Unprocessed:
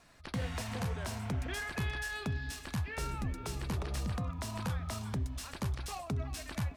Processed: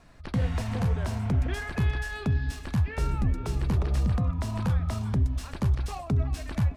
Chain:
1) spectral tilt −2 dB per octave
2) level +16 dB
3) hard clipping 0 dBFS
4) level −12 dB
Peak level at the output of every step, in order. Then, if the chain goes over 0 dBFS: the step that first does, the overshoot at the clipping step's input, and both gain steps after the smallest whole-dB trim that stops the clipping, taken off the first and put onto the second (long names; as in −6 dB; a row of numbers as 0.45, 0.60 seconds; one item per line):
−20.0, −4.0, −4.0, −16.0 dBFS
no step passes full scale